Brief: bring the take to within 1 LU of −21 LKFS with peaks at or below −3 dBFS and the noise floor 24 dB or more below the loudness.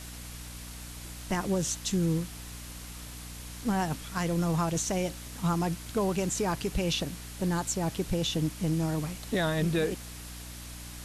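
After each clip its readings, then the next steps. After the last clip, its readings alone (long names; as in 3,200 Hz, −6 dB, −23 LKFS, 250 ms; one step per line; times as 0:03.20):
mains hum 60 Hz; hum harmonics up to 300 Hz; level of the hum −42 dBFS; background noise floor −43 dBFS; target noise floor −55 dBFS; integrated loudness −30.5 LKFS; sample peak −18.5 dBFS; target loudness −21.0 LKFS
→ mains-hum notches 60/120/180/240/300 Hz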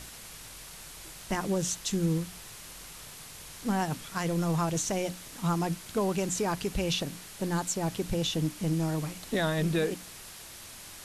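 mains hum none found; background noise floor −47 dBFS; target noise floor −55 dBFS
→ noise reduction from a noise print 8 dB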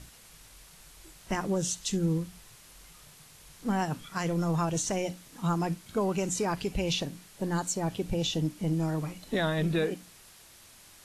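background noise floor −54 dBFS; target noise floor −55 dBFS
→ noise reduction from a noise print 6 dB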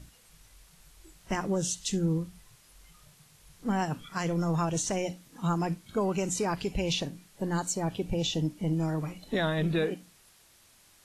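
background noise floor −60 dBFS; integrated loudness −31.0 LKFS; sample peak −18.0 dBFS; target loudness −21.0 LKFS
→ level +10 dB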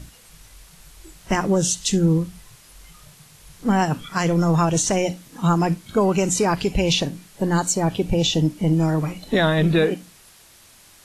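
integrated loudness −21.0 LKFS; sample peak −8.0 dBFS; background noise floor −50 dBFS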